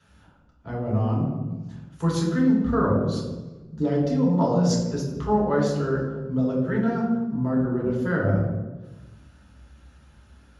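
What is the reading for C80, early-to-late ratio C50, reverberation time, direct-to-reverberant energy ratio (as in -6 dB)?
5.5 dB, 3.5 dB, 1.2 s, -4.5 dB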